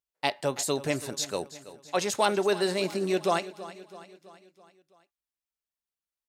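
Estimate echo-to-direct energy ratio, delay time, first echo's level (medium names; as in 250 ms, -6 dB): -14.5 dB, 329 ms, -16.0 dB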